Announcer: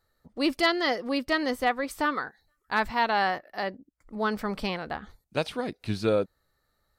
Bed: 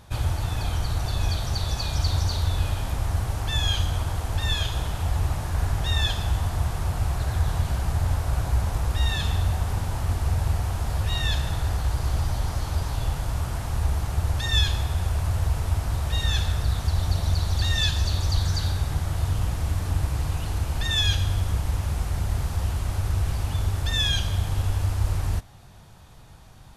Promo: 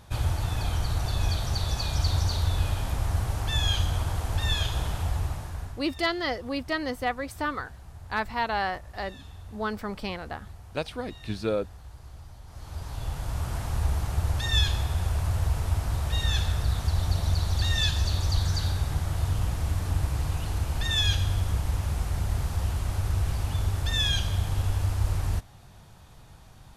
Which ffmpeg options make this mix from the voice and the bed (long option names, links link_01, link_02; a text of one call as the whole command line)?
ffmpeg -i stem1.wav -i stem2.wav -filter_complex "[0:a]adelay=5400,volume=-3dB[link_01];[1:a]volume=17dB,afade=type=out:start_time=4.92:duration=0.91:silence=0.112202,afade=type=in:start_time=12.46:duration=1.11:silence=0.11885[link_02];[link_01][link_02]amix=inputs=2:normalize=0" out.wav